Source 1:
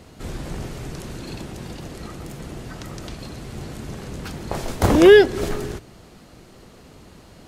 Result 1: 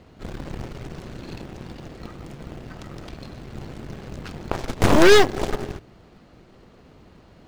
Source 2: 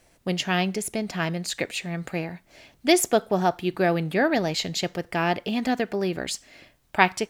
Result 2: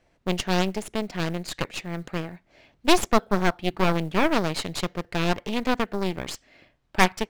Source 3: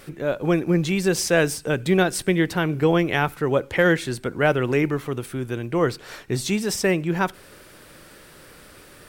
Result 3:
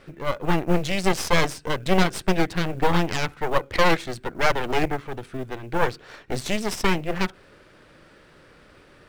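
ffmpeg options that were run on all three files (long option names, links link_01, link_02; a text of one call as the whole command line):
ffmpeg -i in.wav -af "aeval=exprs='0.891*(cos(1*acos(clip(val(0)/0.891,-1,1)))-cos(1*PI/2))+0.00708*(cos(5*acos(clip(val(0)/0.891,-1,1)))-cos(5*PI/2))+0.282*(cos(8*acos(clip(val(0)/0.891,-1,1)))-cos(8*PI/2))':channel_layout=same,adynamicsmooth=sensitivity=5.5:basefreq=4200,acrusher=bits=8:mode=log:mix=0:aa=0.000001,volume=-4dB" out.wav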